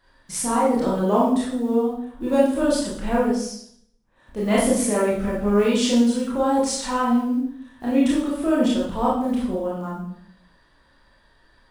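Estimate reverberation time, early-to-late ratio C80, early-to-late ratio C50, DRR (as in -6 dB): 0.65 s, 6.0 dB, 2.5 dB, -6.5 dB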